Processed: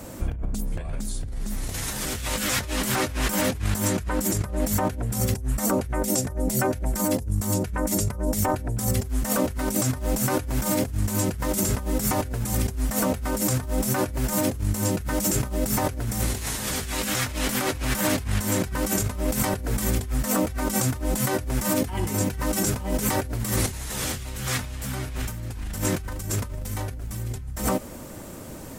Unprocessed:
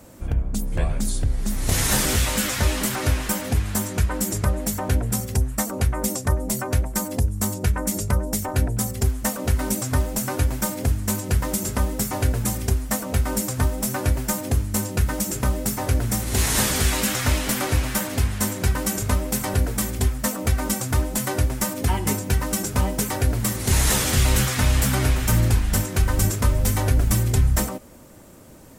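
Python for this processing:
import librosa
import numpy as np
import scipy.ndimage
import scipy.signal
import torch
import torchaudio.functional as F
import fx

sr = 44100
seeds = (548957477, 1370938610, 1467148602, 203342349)

y = fx.peak_eq(x, sr, hz=1100.0, db=-7.5, octaves=0.3, at=(5.86, 6.95))
y = fx.over_compress(y, sr, threshold_db=-29.0, ratio=-1.0)
y = y * librosa.db_to_amplitude(2.0)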